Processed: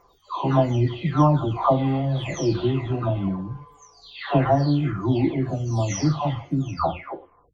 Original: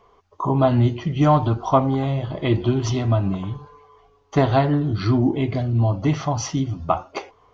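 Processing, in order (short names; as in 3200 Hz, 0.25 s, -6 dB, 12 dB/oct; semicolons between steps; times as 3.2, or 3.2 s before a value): spectral delay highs early, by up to 0.648 s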